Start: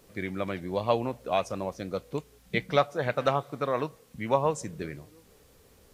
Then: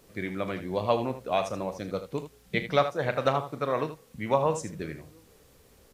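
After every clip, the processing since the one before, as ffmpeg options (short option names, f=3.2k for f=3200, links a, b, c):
-af "aecho=1:1:38|78:0.224|0.282"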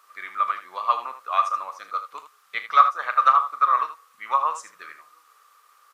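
-af "highpass=f=1.2k:t=q:w=15,volume=-1.5dB"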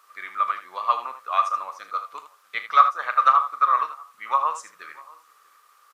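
-filter_complex "[0:a]asplit=2[a][b];[b]adelay=641.4,volume=-23dB,highshelf=f=4k:g=-14.4[c];[a][c]amix=inputs=2:normalize=0"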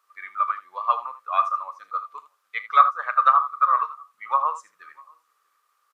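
-af "afftdn=nr=12:nf=-32"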